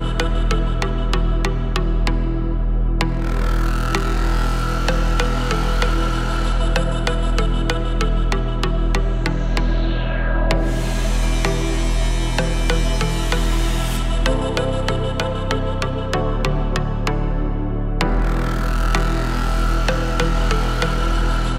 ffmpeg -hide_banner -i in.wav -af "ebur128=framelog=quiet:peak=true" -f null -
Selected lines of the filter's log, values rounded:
Integrated loudness:
  I:         -21.2 LUFS
  Threshold: -31.2 LUFS
Loudness range:
  LRA:         1.1 LU
  Threshold: -41.2 LUFS
  LRA low:   -21.7 LUFS
  LRA high:  -20.6 LUFS
True peak:
  Peak:       -2.5 dBFS